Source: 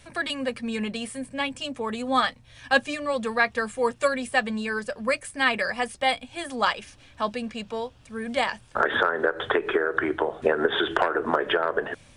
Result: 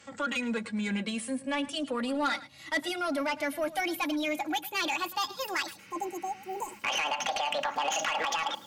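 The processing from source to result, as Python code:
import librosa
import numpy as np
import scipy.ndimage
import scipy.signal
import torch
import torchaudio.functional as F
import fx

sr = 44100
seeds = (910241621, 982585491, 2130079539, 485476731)

p1 = fx.speed_glide(x, sr, from_pct=81, to_pct=200)
p2 = scipy.signal.sosfilt(scipy.signal.butter(4, 110.0, 'highpass', fs=sr, output='sos'), p1)
p3 = p2 + 0.58 * np.pad(p2, (int(3.6 * sr / 1000.0), 0))[:len(p2)]
p4 = fx.over_compress(p3, sr, threshold_db=-27.0, ratio=-1.0)
p5 = p3 + (p4 * librosa.db_to_amplitude(-2.5))
p6 = 10.0 ** (-14.5 / 20.0) * np.tanh(p5 / 10.0 ** (-14.5 / 20.0))
p7 = fx.spec_repair(p6, sr, seeds[0], start_s=5.81, length_s=0.95, low_hz=1100.0, high_hz=6200.0, source='after')
p8 = p7 + 10.0 ** (-17.0 / 20.0) * np.pad(p7, (int(108 * sr / 1000.0), 0))[:len(p7)]
y = p8 * librosa.db_to_amplitude(-8.0)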